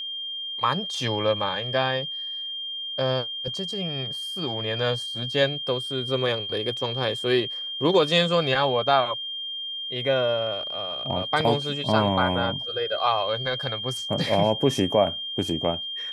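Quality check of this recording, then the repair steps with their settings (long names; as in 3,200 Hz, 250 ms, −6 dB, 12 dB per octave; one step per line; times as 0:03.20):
whistle 3,200 Hz −30 dBFS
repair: notch filter 3,200 Hz, Q 30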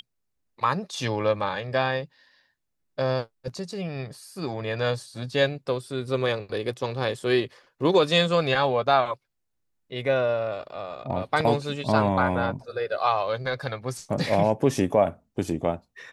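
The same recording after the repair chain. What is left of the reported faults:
none of them is left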